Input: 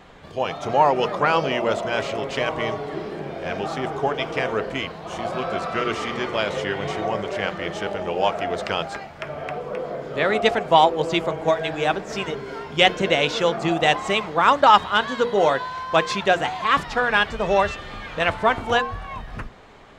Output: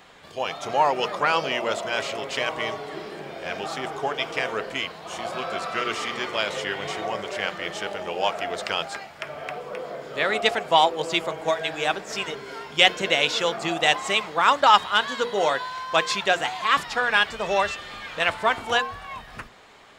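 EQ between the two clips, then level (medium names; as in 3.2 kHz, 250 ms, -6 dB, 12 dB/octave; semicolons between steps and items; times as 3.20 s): tilt EQ +2.5 dB/octave; band-stop 6.1 kHz, Q 26; -2.5 dB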